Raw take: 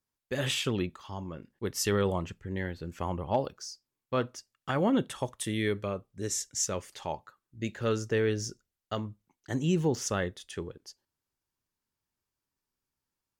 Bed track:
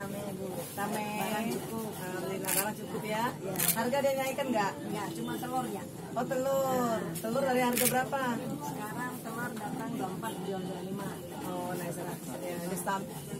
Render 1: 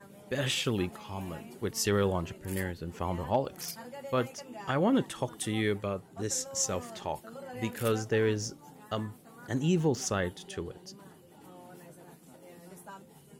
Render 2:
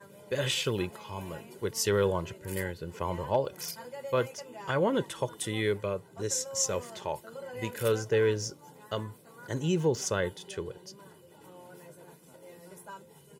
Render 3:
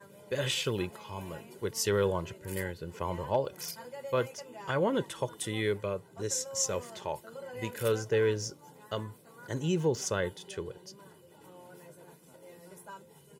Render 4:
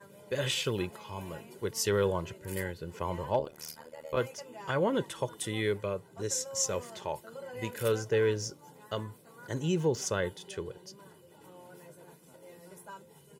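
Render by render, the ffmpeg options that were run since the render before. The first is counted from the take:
-filter_complex "[1:a]volume=0.188[s0];[0:a][s0]amix=inputs=2:normalize=0"
-af "highpass=94,aecho=1:1:2:0.51"
-af "volume=0.841"
-filter_complex "[0:a]asettb=1/sr,asplit=3[s0][s1][s2];[s0]atrim=end=3.394[s3];[s1]atrim=start=3.39:end=4.17,asetpts=PTS-STARTPTS,afade=t=in:d=0.004:c=qsin,afade=t=out:st=0.776:d=0.004:c=qsin,tremolo=f=77:d=0.919[s4];[s2]atrim=start=4.166[s5];[s3][s4]acrossfade=d=0.004:c1=hsin:c2=qsin[s6];[s6][s5]acrossfade=d=0.004:c1=qsin:c2=hsin"

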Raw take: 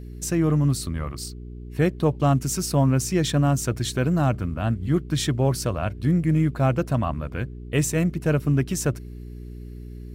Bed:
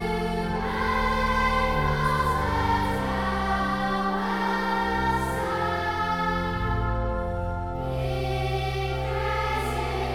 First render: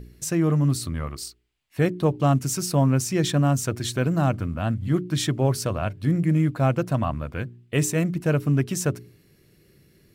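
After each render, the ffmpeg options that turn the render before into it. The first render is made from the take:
-af "bandreject=f=60:t=h:w=4,bandreject=f=120:t=h:w=4,bandreject=f=180:t=h:w=4,bandreject=f=240:t=h:w=4,bandreject=f=300:t=h:w=4,bandreject=f=360:t=h:w=4,bandreject=f=420:t=h:w=4"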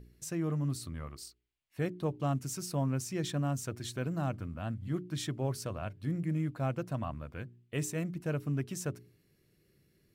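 -af "volume=0.251"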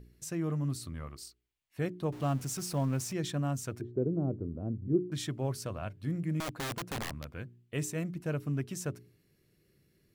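-filter_complex "[0:a]asettb=1/sr,asplit=3[s0][s1][s2];[s0]atrim=end=2.124[s3];[s1]atrim=start=2.12:end=3.13,asetpts=PTS-STARTPTS,afade=t=in:d=0.004:c=qsin,afade=t=out:st=1.006:d=0.004:c=qsin,aeval=exprs='val(0)+0.5*0.00668*sgn(val(0))':c=same[s4];[s2]atrim=start=3.126[s5];[s3][s4]acrossfade=d=0.004:c1=hsin:c2=qsin[s6];[s6][s5]acrossfade=d=0.004:c1=qsin:c2=hsin,asettb=1/sr,asplit=3[s7][s8][s9];[s7]atrim=end=3.814[s10];[s8]atrim=start=3.81:end=5.12,asetpts=PTS-STARTPTS,afade=t=in:d=0.004:c=qsin,afade=t=out:st=1.306:d=0.004:c=qsin,lowpass=f=400:t=q:w=4.3[s11];[s9]atrim=start=5.116[s12];[s10][s11]acrossfade=d=0.004:c1=hsin:c2=qsin[s13];[s13][s12]acrossfade=d=0.004:c1=qsin:c2=hsin,asettb=1/sr,asplit=3[s14][s15][s16];[s14]atrim=end=6.404[s17];[s15]atrim=start=6.4:end=7.28,asetpts=PTS-STARTPTS,afade=t=in:d=0.004:c=qsin,afade=t=out:st=0.876:d=0.004:c=qsin,aeval=exprs='(mod(35.5*val(0)+1,2)-1)/35.5':c=same[s18];[s16]atrim=start=7.276[s19];[s17][s18]acrossfade=d=0.004:c1=hsin:c2=qsin[s20];[s20][s19]acrossfade=d=0.004:c1=qsin:c2=hsin"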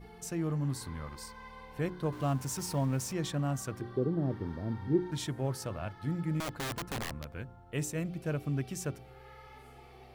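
-filter_complex "[1:a]volume=0.0501[s0];[0:a][s0]amix=inputs=2:normalize=0"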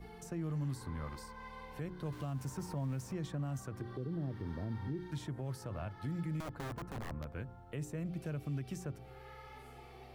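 -filter_complex "[0:a]acrossover=split=160|1700[s0][s1][s2];[s0]acompressor=threshold=0.0178:ratio=4[s3];[s1]acompressor=threshold=0.01:ratio=4[s4];[s2]acompressor=threshold=0.00178:ratio=4[s5];[s3][s4][s5]amix=inputs=3:normalize=0,alimiter=level_in=2.24:limit=0.0631:level=0:latency=1:release=73,volume=0.447"

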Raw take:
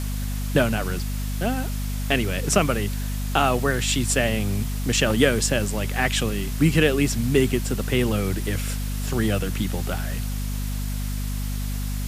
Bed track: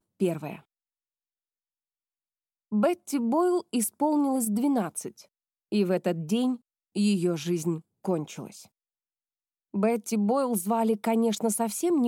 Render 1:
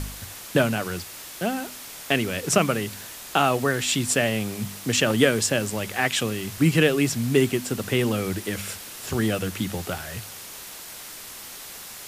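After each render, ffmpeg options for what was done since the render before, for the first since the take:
-af "bandreject=f=50:t=h:w=4,bandreject=f=100:t=h:w=4,bandreject=f=150:t=h:w=4,bandreject=f=200:t=h:w=4,bandreject=f=250:t=h:w=4"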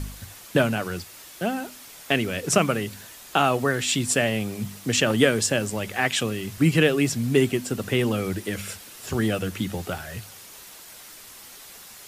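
-af "afftdn=nr=6:nf=-40"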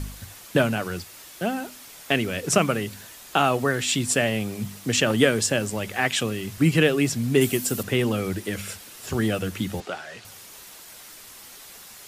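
-filter_complex "[0:a]asettb=1/sr,asplit=3[s0][s1][s2];[s0]atrim=end=7.414[s3];[s1]atrim=start=7.41:end=7.83,asetpts=PTS-STARTPTS,afade=t=in:d=0.004:c=qsin,afade=t=out:st=0.416:d=0.004:c=qsin,aemphasis=mode=production:type=50kf[s4];[s2]atrim=start=7.826[s5];[s3][s4]acrossfade=d=0.004:c1=hsin:c2=qsin[s6];[s6][s5]acrossfade=d=0.004:c1=qsin:c2=hsin,asettb=1/sr,asplit=3[s7][s8][s9];[s7]atrim=end=9.804[s10];[s8]atrim=start=9.8:end=10.25,asetpts=PTS-STARTPTS,afade=t=in:d=0.004:c=qsin,afade=t=out:st=0.446:d=0.004:c=qsin,highpass=320,lowpass=5900[s11];[s9]atrim=start=10.246[s12];[s10][s11]acrossfade=d=0.004:c1=hsin:c2=qsin[s13];[s13][s12]acrossfade=d=0.004:c1=qsin:c2=hsin"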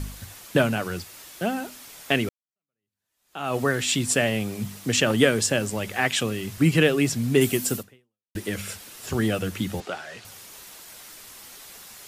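-filter_complex "[0:a]asplit=3[s0][s1][s2];[s0]atrim=end=2.29,asetpts=PTS-STARTPTS,afade=t=out:st=2.286:d=0.004:c=hsin[s3];[s1]atrim=start=2.29:end=8.35,asetpts=PTS-STARTPTS,afade=t=in:d=1.28:c=exp,afade=t=out:st=5.47:d=0.59:c=exp[s4];[s2]atrim=start=8.35,asetpts=PTS-STARTPTS,afade=t=in:d=0.004:c=hsin[s5];[s3][s4][s5]concat=n=3:v=0:a=1"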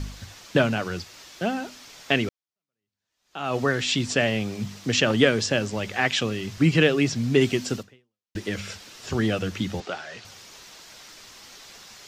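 -filter_complex "[0:a]acrossover=split=6800[s0][s1];[s1]acompressor=threshold=0.00891:ratio=4:attack=1:release=60[s2];[s0][s2]amix=inputs=2:normalize=0,highshelf=f=7800:t=q:w=1.5:g=-11"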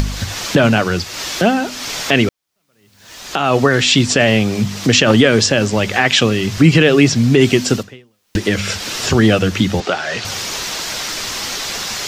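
-af "acompressor=mode=upward:threshold=0.0562:ratio=2.5,alimiter=level_in=4.22:limit=0.891:release=50:level=0:latency=1"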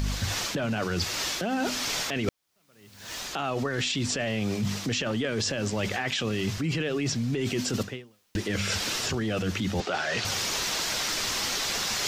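-af "alimiter=limit=0.316:level=0:latency=1:release=15,areverse,acompressor=threshold=0.0501:ratio=6,areverse"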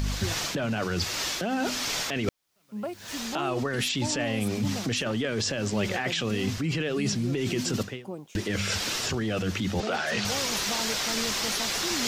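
-filter_complex "[1:a]volume=0.299[s0];[0:a][s0]amix=inputs=2:normalize=0"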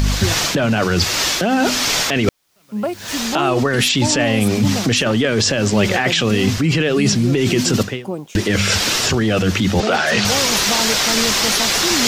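-af "volume=3.98,alimiter=limit=0.794:level=0:latency=1"

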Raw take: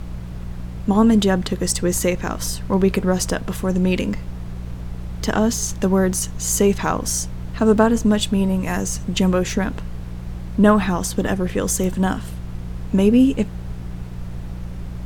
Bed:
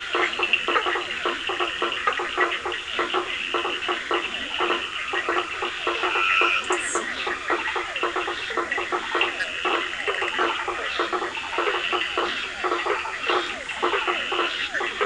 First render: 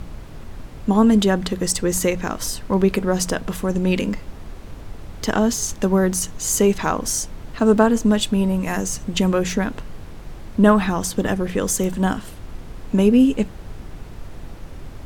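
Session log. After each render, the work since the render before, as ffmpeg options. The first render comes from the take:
-af "bandreject=f=60:t=h:w=4,bandreject=f=120:t=h:w=4,bandreject=f=180:t=h:w=4"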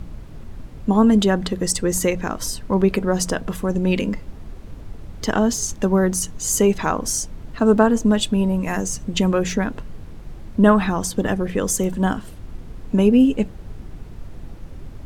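-af "afftdn=nr=6:nf=-37"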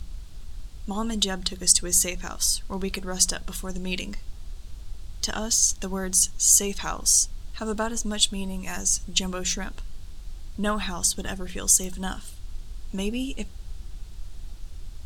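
-af "equalizer=f=125:t=o:w=1:g=-11,equalizer=f=250:t=o:w=1:g=-12,equalizer=f=500:t=o:w=1:g=-12,equalizer=f=1000:t=o:w=1:g=-6,equalizer=f=2000:t=o:w=1:g=-7,equalizer=f=4000:t=o:w=1:g=5,equalizer=f=8000:t=o:w=1:g=5"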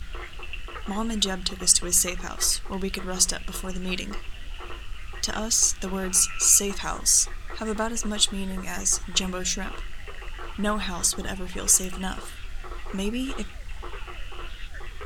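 -filter_complex "[1:a]volume=0.126[s0];[0:a][s0]amix=inputs=2:normalize=0"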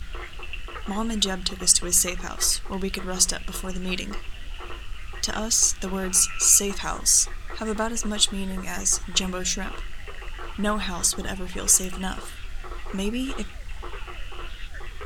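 -af "volume=1.12,alimiter=limit=0.708:level=0:latency=1"

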